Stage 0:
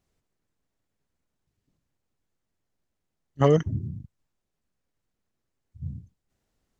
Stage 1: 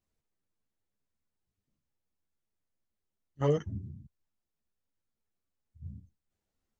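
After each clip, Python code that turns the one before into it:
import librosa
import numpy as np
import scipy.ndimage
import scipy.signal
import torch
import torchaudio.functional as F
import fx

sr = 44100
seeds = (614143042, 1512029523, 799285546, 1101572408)

y = fx.ensemble(x, sr)
y = y * 10.0 ** (-6.0 / 20.0)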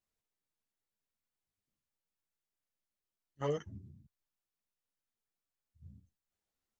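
y = fx.low_shelf(x, sr, hz=420.0, db=-9.0)
y = y * 10.0 ** (-2.5 / 20.0)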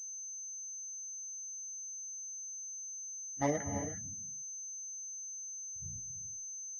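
y = fx.spec_ripple(x, sr, per_octave=0.67, drift_hz=-0.67, depth_db=17)
y = fx.rev_gated(y, sr, seeds[0], gate_ms=380, shape='rising', drr_db=7.0)
y = fx.pwm(y, sr, carrier_hz=6200.0)
y = y * 10.0 ** (3.5 / 20.0)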